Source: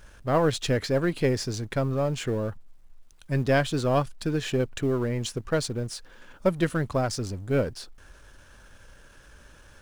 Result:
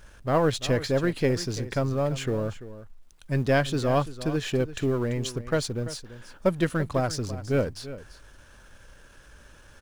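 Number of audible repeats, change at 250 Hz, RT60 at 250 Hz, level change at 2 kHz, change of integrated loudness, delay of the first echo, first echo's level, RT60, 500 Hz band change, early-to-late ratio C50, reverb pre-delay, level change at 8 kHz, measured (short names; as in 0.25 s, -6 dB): 1, 0.0 dB, none, 0.0 dB, 0.0 dB, 0.339 s, -14.5 dB, none, 0.0 dB, none, none, -0.5 dB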